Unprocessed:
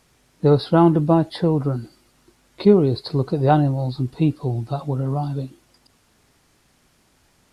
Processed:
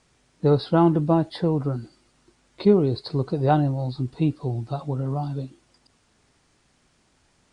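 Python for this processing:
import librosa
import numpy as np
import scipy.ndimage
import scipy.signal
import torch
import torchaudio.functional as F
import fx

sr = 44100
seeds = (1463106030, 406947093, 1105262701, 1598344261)

y = scipy.signal.sosfilt(scipy.signal.butter(12, 9800.0, 'lowpass', fs=sr, output='sos'), x)
y = F.gain(torch.from_numpy(y), -3.5).numpy()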